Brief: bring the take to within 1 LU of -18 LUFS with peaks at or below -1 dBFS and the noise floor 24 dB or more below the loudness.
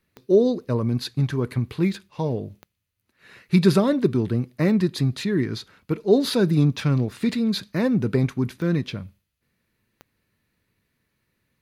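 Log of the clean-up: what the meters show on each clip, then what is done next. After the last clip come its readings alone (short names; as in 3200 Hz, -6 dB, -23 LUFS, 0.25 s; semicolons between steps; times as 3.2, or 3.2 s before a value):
clicks 4; loudness -22.5 LUFS; peak -4.5 dBFS; loudness target -18.0 LUFS
-> de-click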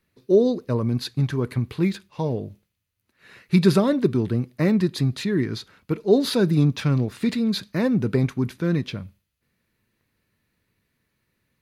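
clicks 0; loudness -22.5 LUFS; peak -4.5 dBFS; loudness target -18.0 LUFS
-> gain +4.5 dB; limiter -1 dBFS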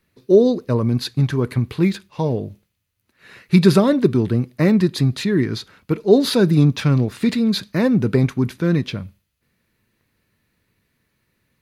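loudness -18.0 LUFS; peak -1.0 dBFS; noise floor -72 dBFS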